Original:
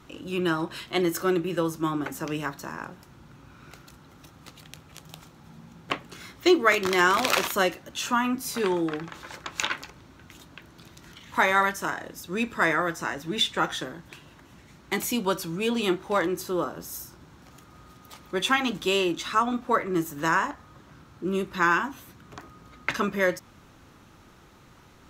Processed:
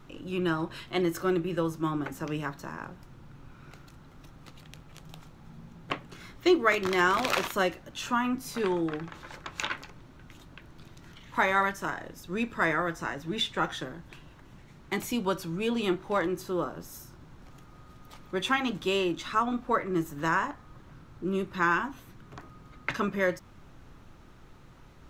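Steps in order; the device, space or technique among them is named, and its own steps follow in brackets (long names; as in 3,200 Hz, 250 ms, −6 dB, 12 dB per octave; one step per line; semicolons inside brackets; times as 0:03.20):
car interior (parametric band 130 Hz +4.5 dB 0.8 octaves; high-shelf EQ 4,600 Hz −7 dB; brown noise bed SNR 22 dB)
level −3 dB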